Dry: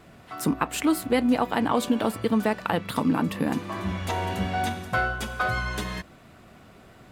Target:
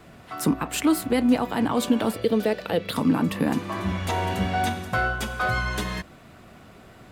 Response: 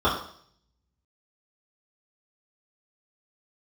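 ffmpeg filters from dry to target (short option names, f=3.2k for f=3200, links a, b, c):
-filter_complex "[0:a]asettb=1/sr,asplit=3[a][b][c];[a]atrim=end=2.134[d];[b]atrim=start=2.13:end=2.93,asetpts=PTS-STARTPTS,afade=t=in:d=0.004:c=qsin,afade=t=out:st=0.796:d=0.004:c=qsin,equalizer=f=125:t=o:w=1:g=-5,equalizer=f=250:t=o:w=1:g=-4,equalizer=f=500:t=o:w=1:g=10,equalizer=f=1k:t=o:w=1:g=-10,equalizer=f=4k:t=o:w=1:g=5,equalizer=f=8k:t=o:w=1:g=-5[e];[c]atrim=start=2.926[f];[d][e]acrossfade=d=0.004:c1=hsin:c2=qsin[g];[g][f]acrossfade=d=0.004:c1=qsin:c2=hsin,acrossover=split=310|4600[h][i][j];[i]alimiter=limit=-19dB:level=0:latency=1:release=31[k];[h][k][j]amix=inputs=3:normalize=0,volume=2.5dB"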